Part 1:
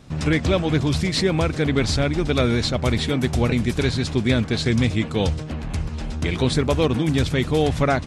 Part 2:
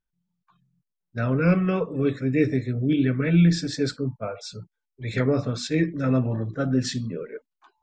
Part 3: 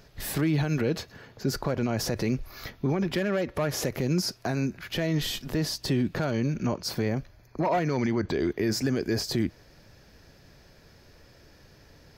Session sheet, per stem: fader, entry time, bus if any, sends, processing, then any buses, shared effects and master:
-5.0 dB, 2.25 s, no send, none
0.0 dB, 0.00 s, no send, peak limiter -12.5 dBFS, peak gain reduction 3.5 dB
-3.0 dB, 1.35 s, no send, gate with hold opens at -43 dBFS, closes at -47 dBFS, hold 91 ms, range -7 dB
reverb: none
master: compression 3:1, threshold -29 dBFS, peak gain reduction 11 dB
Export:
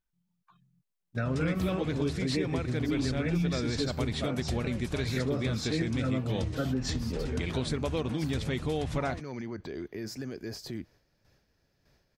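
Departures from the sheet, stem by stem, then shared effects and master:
stem 1: entry 2.25 s -> 1.15 s; stem 3 -3.0 dB -> -11.5 dB

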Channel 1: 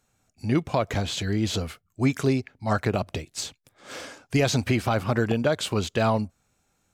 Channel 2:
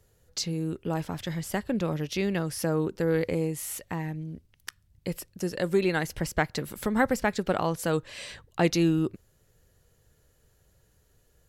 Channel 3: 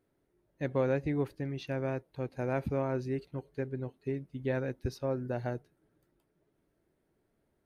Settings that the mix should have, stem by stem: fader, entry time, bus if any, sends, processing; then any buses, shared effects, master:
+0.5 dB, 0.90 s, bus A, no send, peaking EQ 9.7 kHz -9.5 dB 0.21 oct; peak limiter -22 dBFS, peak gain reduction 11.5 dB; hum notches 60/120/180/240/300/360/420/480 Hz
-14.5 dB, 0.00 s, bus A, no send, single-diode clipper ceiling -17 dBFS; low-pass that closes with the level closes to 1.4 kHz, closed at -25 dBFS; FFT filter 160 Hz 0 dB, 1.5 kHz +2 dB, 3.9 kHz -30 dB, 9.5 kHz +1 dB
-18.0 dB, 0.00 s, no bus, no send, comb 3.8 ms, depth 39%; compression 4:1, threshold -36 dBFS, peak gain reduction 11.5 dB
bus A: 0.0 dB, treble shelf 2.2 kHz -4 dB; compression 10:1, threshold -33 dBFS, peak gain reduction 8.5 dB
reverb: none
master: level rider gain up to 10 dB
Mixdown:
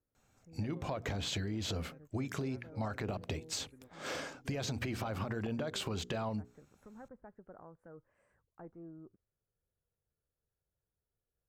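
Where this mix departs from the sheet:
stem 1: entry 0.90 s -> 0.15 s; stem 2 -14.5 dB -> -25.5 dB; master: missing level rider gain up to 10 dB

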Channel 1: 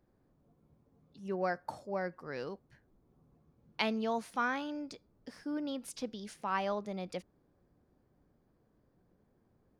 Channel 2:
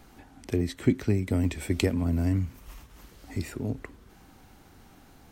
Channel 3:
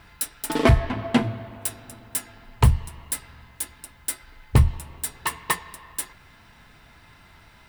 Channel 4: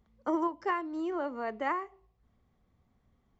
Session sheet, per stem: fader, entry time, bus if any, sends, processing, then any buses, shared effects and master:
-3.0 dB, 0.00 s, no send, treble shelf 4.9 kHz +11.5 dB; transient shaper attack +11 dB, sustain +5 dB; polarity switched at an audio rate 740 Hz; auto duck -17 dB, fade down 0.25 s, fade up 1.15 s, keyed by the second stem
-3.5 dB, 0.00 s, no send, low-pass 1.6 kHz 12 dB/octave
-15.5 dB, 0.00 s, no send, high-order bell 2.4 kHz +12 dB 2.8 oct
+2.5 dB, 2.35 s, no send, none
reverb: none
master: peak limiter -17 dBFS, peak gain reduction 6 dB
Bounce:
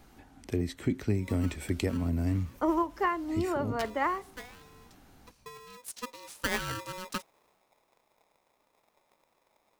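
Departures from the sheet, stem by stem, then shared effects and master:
stem 2: missing low-pass 1.6 kHz 12 dB/octave; stem 3: muted

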